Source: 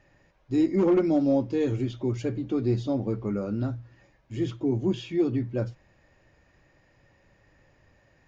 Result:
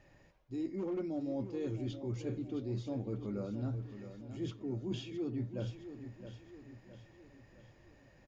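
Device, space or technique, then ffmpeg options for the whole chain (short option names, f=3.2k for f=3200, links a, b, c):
compression on the reversed sound: -af "equalizer=f=1.5k:w=1.1:g=-3,areverse,acompressor=threshold=-35dB:ratio=6,areverse,aecho=1:1:665|1330|1995|2660|3325:0.299|0.146|0.0717|0.0351|0.0172,volume=-1dB"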